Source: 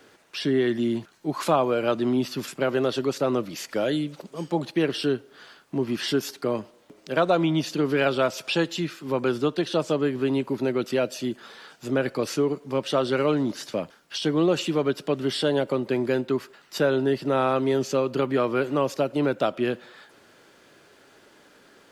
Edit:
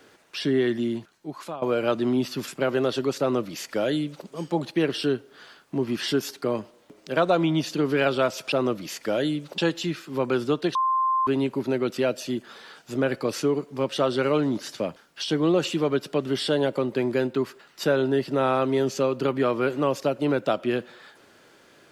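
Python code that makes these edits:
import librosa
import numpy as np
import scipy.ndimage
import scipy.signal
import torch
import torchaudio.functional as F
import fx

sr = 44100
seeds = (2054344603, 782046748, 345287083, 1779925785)

y = fx.edit(x, sr, fx.fade_out_to(start_s=0.65, length_s=0.97, floor_db=-18.0),
    fx.duplicate(start_s=3.2, length_s=1.06, to_s=8.52),
    fx.bleep(start_s=9.69, length_s=0.52, hz=1050.0, db=-19.5), tone=tone)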